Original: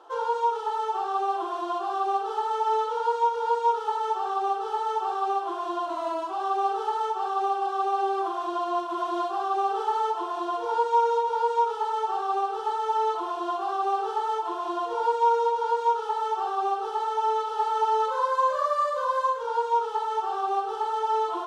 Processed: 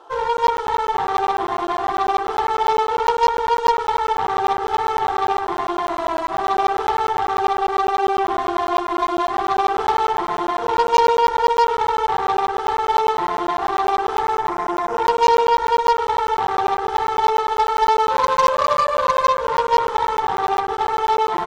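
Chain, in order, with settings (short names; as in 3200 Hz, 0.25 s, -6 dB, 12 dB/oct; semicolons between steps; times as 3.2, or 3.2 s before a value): spectral delete 14.22–15.11, 2200–4700 Hz; on a send: feedback echo 0.28 s, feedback 55%, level -10 dB; on the sum: added harmonics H 6 -17 dB, 8 -16 dB, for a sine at -11.5 dBFS; crackling interface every 0.10 s, samples 512, zero, from 0.37; gain +6 dB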